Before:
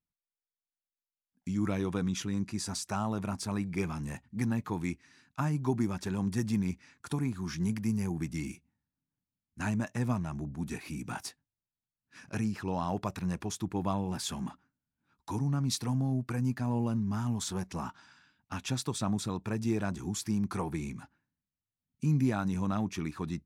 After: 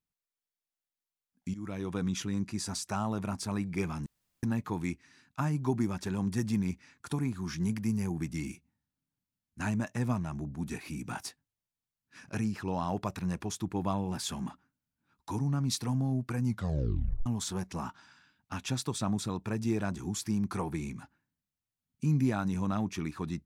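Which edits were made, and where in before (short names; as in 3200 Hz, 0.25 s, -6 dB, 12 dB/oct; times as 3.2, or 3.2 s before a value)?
1.54–2.08 fade in, from -14.5 dB
4.06–4.43 room tone
16.44 tape stop 0.82 s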